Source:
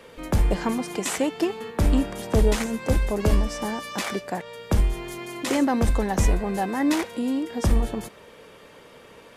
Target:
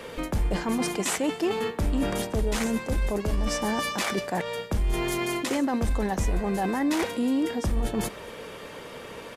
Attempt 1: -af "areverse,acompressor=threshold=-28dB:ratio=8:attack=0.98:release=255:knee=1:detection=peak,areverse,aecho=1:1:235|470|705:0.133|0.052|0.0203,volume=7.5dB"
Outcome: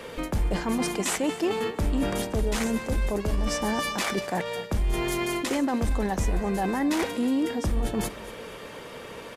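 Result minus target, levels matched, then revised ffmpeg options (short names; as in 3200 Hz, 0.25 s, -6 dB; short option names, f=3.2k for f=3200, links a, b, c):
echo-to-direct +8.5 dB
-af "areverse,acompressor=threshold=-28dB:ratio=8:attack=0.98:release=255:knee=1:detection=peak,areverse,aecho=1:1:235|470:0.0501|0.0195,volume=7.5dB"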